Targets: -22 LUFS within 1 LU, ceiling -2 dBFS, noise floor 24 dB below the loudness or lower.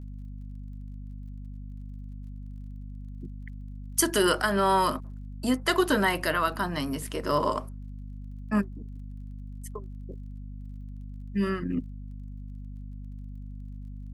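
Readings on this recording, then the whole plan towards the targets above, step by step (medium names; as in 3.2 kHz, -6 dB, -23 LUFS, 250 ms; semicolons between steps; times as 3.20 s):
tick rate 27 per s; hum 50 Hz; highest harmonic 250 Hz; hum level -37 dBFS; loudness -27.0 LUFS; peak level -8.5 dBFS; loudness target -22.0 LUFS
-> de-click; hum notches 50/100/150/200/250 Hz; trim +5 dB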